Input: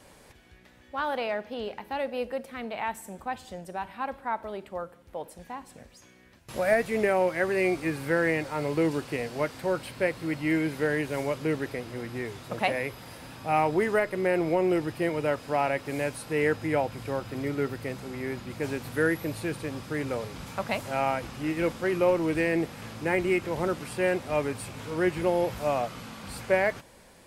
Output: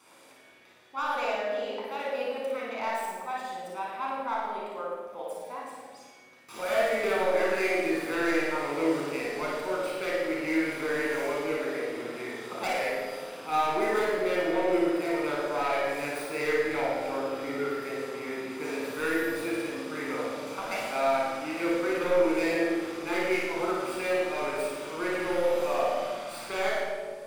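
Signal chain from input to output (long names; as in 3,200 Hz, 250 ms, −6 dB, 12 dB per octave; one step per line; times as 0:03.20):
stylus tracing distortion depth 0.099 ms
high-pass filter 410 Hz 12 dB per octave
hard clipping −22 dBFS, distortion −14 dB
flutter between parallel walls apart 9.6 metres, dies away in 0.67 s
convolution reverb RT60 1.6 s, pre-delay 25 ms, DRR −1.5 dB
level −5.5 dB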